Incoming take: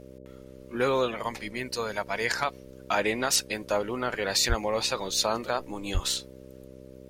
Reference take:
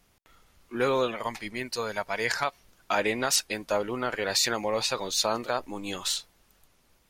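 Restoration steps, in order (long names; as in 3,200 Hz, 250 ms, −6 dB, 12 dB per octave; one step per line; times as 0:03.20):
hum removal 65 Hz, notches 9
high-pass at the plosives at 0:04.48/0:05.93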